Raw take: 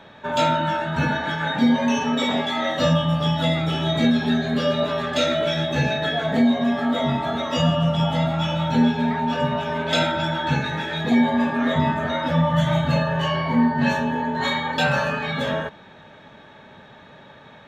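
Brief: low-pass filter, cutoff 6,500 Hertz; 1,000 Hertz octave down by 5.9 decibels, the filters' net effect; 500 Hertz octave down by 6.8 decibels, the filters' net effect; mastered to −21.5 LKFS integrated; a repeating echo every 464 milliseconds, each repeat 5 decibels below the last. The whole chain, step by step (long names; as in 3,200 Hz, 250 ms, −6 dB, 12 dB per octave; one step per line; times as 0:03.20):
low-pass filter 6,500 Hz
parametric band 500 Hz −7 dB
parametric band 1,000 Hz −5 dB
repeating echo 464 ms, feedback 56%, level −5 dB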